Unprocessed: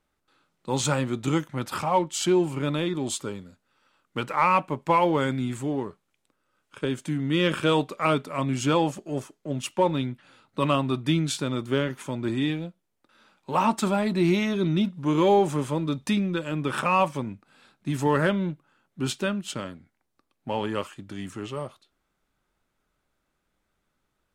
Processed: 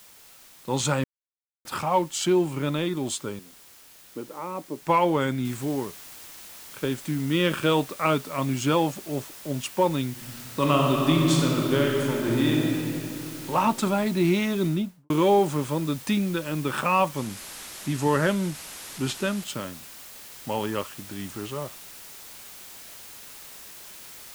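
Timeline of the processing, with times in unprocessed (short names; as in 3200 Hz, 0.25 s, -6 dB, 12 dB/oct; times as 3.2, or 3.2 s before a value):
1.04–1.65 mute
3.39–4.82 band-pass 340 Hz, Q 2
5.45 noise floor step -51 dB -44 dB
10.1–13.5 reverb throw, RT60 3 s, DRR -1.5 dB
14.62–15.1 studio fade out
17.17–19.44 delta modulation 64 kbps, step -32.5 dBFS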